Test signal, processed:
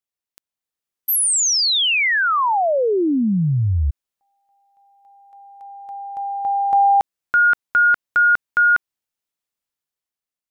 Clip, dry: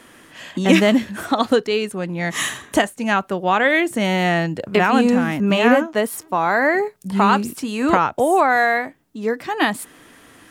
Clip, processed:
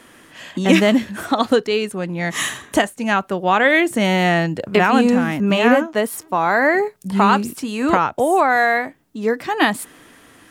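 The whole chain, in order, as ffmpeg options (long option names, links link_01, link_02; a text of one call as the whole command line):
ffmpeg -i in.wav -af "dynaudnorm=framelen=110:gausssize=13:maxgain=5dB" out.wav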